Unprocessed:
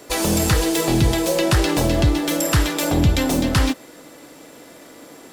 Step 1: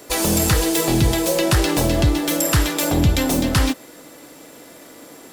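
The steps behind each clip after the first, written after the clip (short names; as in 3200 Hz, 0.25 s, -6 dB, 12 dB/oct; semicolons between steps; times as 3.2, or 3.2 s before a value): high shelf 9400 Hz +6.5 dB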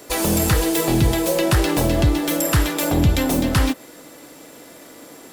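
dynamic EQ 5800 Hz, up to -4 dB, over -33 dBFS, Q 0.71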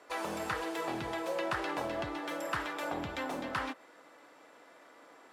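band-pass 1200 Hz, Q 1.1; gain -7.5 dB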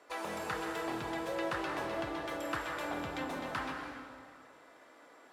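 plate-style reverb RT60 1.9 s, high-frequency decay 0.75×, pre-delay 0.115 s, DRR 3 dB; gain -3 dB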